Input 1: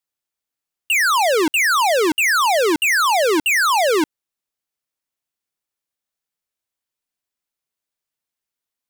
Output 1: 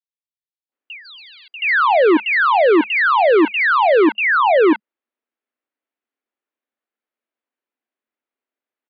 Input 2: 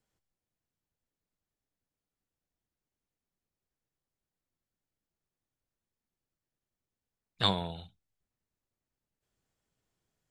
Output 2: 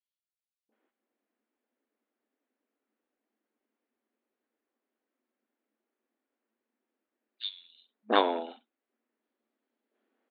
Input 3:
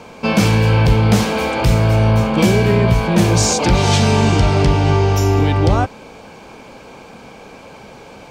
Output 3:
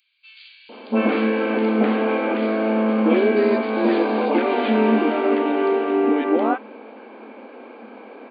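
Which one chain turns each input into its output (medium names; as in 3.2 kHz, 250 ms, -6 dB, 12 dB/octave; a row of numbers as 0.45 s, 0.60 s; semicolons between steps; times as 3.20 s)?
distance through air 480 m; FFT band-pass 210–4800 Hz; three bands offset in time highs, lows, mids 690/720 ms, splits 930/3800 Hz; peak normalisation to -6 dBFS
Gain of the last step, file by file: +7.0 dB, +12.0 dB, +1.5 dB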